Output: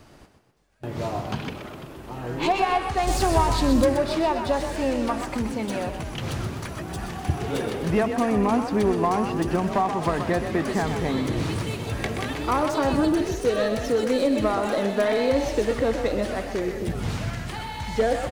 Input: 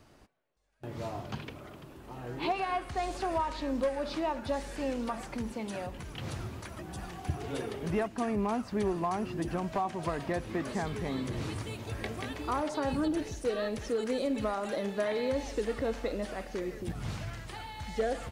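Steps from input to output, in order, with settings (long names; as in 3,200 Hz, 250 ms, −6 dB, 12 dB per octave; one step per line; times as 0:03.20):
stylus tracing distortion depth 0.05 ms
0:03.07–0:03.85: bass and treble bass +10 dB, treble +11 dB
on a send: echo with shifted repeats 126 ms, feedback 47%, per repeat +37 Hz, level −8 dB
on the sum: level +8.5 dB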